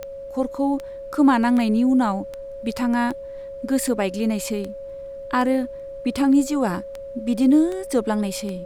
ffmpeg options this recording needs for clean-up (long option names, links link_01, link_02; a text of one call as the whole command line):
ffmpeg -i in.wav -af "adeclick=threshold=4,bandreject=frequency=550:width=30,agate=range=-21dB:threshold=-27dB" out.wav